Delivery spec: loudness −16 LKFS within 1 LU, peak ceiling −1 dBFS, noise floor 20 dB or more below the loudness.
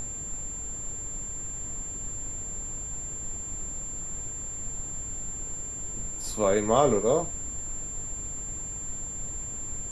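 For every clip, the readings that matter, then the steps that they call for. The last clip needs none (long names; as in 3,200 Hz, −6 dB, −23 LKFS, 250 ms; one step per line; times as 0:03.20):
interfering tone 7,300 Hz; level of the tone −34 dBFS; background noise floor −36 dBFS; target noise floor −51 dBFS; integrated loudness −30.5 LKFS; sample peak −8.5 dBFS; target loudness −16.0 LKFS
→ notch filter 7,300 Hz, Q 30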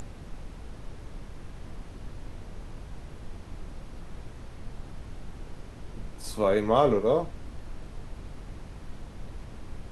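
interfering tone none found; background noise floor −44 dBFS; target noise floor −46 dBFS
→ noise reduction from a noise print 6 dB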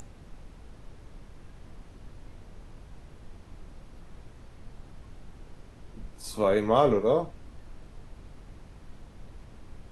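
background noise floor −50 dBFS; integrated loudness −25.5 LKFS; sample peak −9.0 dBFS; target loudness −16.0 LKFS
→ level +9.5 dB
brickwall limiter −1 dBFS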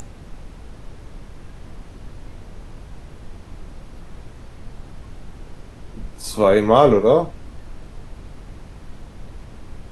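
integrated loudness −16.5 LKFS; sample peak −1.0 dBFS; background noise floor −41 dBFS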